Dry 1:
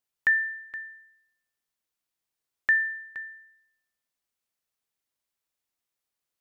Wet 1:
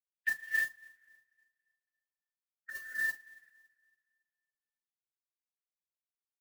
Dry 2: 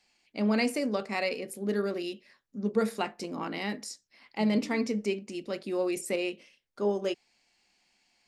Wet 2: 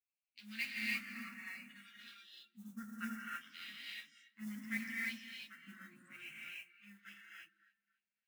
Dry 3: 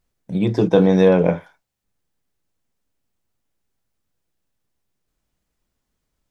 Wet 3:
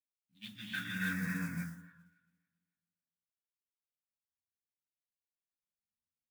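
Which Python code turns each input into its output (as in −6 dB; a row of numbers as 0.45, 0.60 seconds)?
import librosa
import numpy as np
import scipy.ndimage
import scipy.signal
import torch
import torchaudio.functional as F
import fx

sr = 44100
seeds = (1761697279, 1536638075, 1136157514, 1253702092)

y = fx.wiener(x, sr, points=25)
y = fx.low_shelf(y, sr, hz=200.0, db=8.0)
y = fx.hum_notches(y, sr, base_hz=60, count=3)
y = fx.chorus_voices(y, sr, voices=4, hz=0.68, base_ms=11, depth_ms=3.4, mix_pct=50)
y = fx.dynamic_eq(y, sr, hz=1700.0, q=2.8, threshold_db=-43.0, ratio=4.0, max_db=3)
y = fx.filter_lfo_bandpass(y, sr, shape='sine', hz=0.64, low_hz=820.0, high_hz=3600.0, q=2.3)
y = scipy.signal.sosfilt(scipy.signal.ellip(3, 1.0, 40, [230.0, 1500.0], 'bandstop', fs=sr, output='sos'), y)
y = fx.echo_alternate(y, sr, ms=140, hz=880.0, feedback_pct=60, wet_db=-11)
y = fx.rev_gated(y, sr, seeds[0], gate_ms=350, shape='rising', drr_db=-4.5)
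y = fx.mod_noise(y, sr, seeds[1], snr_db=16)
y = fx.noise_reduce_blind(y, sr, reduce_db=11)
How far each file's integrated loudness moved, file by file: −8.5, −13.0, −21.5 LU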